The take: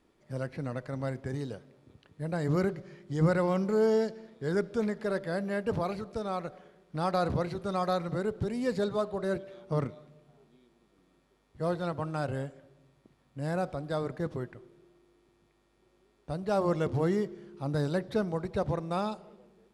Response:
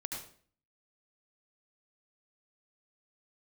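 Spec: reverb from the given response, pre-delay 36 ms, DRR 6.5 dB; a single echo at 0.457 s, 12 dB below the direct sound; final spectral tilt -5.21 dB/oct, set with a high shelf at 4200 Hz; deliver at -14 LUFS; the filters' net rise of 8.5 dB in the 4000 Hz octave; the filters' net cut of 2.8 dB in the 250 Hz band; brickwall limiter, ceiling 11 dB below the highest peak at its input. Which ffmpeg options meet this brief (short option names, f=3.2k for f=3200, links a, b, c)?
-filter_complex "[0:a]equalizer=f=250:t=o:g=-4.5,equalizer=f=4k:t=o:g=6.5,highshelf=f=4.2k:g=6,alimiter=level_in=2.5dB:limit=-24dB:level=0:latency=1,volume=-2.5dB,aecho=1:1:457:0.251,asplit=2[a][b];[1:a]atrim=start_sample=2205,adelay=36[c];[b][c]afir=irnorm=-1:irlink=0,volume=-7dB[d];[a][d]amix=inputs=2:normalize=0,volume=22dB"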